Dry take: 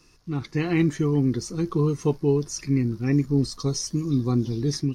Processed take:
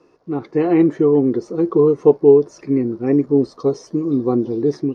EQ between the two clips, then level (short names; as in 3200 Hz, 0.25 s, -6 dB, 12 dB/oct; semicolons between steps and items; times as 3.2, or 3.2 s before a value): band-pass 600 Hz, Q 0.69; bell 480 Hz +11.5 dB 1.9 oct; +3.5 dB